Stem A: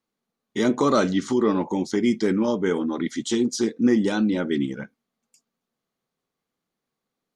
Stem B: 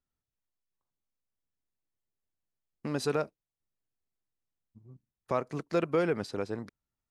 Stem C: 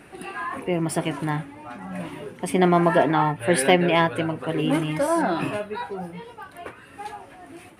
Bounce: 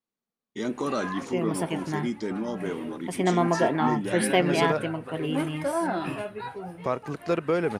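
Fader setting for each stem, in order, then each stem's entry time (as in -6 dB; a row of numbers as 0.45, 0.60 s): -9.0, +2.5, -5.0 dB; 0.00, 1.55, 0.65 s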